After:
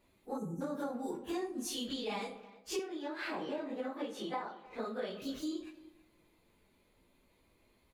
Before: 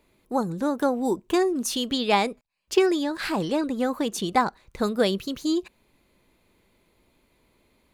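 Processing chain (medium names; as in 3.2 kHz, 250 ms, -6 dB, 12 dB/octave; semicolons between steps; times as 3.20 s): phase randomisation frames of 100 ms; 0.38–0.61 s: time-frequency box 520–5700 Hz -28 dB; 2.79–5.22 s: three-band isolator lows -18 dB, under 240 Hz, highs -14 dB, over 3.6 kHz; compression 6:1, threshold -30 dBFS, peak gain reduction 17.5 dB; speakerphone echo 320 ms, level -18 dB; algorithmic reverb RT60 1 s, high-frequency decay 0.35×, pre-delay 5 ms, DRR 10.5 dB; trim -6 dB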